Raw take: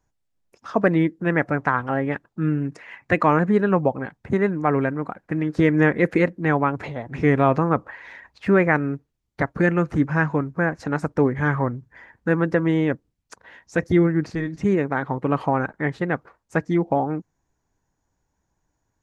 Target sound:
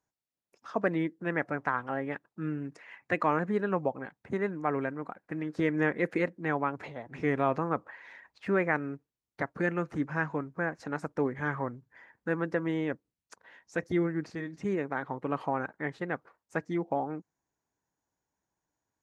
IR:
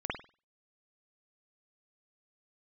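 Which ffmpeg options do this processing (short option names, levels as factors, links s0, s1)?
-af "highpass=f=240:p=1,volume=0.376"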